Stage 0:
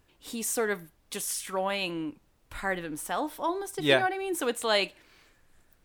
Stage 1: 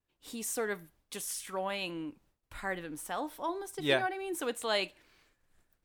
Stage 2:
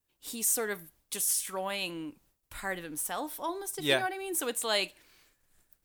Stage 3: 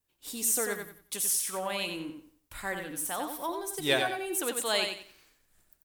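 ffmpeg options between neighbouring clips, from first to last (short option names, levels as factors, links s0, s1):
-af "agate=range=0.0224:threshold=0.00158:ratio=3:detection=peak,volume=0.531"
-af "crystalizer=i=2:c=0"
-af "aecho=1:1:91|182|273|364:0.501|0.14|0.0393|0.011"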